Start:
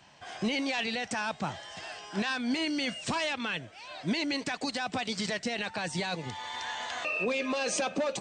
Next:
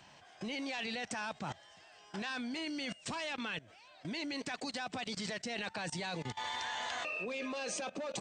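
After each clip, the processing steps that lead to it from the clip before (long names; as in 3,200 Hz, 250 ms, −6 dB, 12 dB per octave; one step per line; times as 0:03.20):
output level in coarse steps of 20 dB
level +1 dB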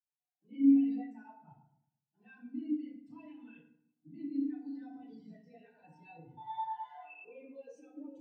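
feedback delay network reverb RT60 1.6 s, low-frequency decay 1.4×, high-frequency decay 0.6×, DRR −8 dB
every bin expanded away from the loudest bin 2.5 to 1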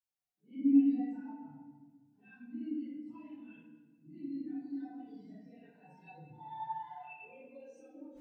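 random phases in long frames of 100 ms
rectangular room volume 1,300 cubic metres, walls mixed, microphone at 1.1 metres
level −2 dB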